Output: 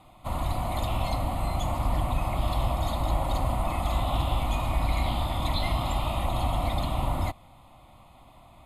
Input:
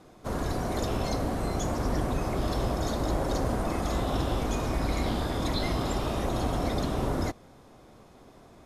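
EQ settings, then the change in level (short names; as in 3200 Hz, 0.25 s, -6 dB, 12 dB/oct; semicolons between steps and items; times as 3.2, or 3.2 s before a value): bell 210 Hz -6.5 dB 1.3 oct; fixed phaser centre 1600 Hz, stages 6; +5.0 dB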